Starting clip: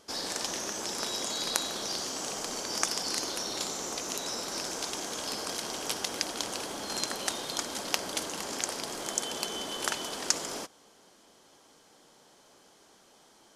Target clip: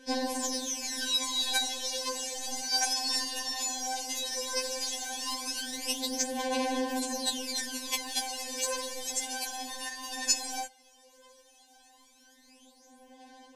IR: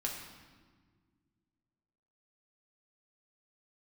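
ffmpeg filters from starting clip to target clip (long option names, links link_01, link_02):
-filter_complex "[0:a]asettb=1/sr,asplit=3[link_01][link_02][link_03];[link_01]atrim=end=9.674[link_04];[link_02]atrim=start=9.67:end=10.12,asetpts=PTS-STARTPTS,afade=type=in:duration=0.004:curve=qsin,afade=type=out:start_time=0.446:duration=0.004:curve=qsin,acompressor=threshold=-33dB:ratio=10[link_05];[link_03]atrim=start=10.116[link_06];[link_04][link_05]acrossfade=duration=0.004:curve1=hsin:curve2=qsin[link_07];[link_07][link_06]acrossfade=duration=0.004:curve1=qsin:curve2=hsin,asuperstop=centerf=1300:order=4:qfactor=4.7,aphaser=in_gain=1:out_gain=1:delay=2.8:decay=0.74:speed=0.15:type=sinusoidal,afftfilt=real='re*3.46*eq(mod(b,12),0)':imag='im*3.46*eq(mod(b,12),0)':win_size=2048:overlap=0.75"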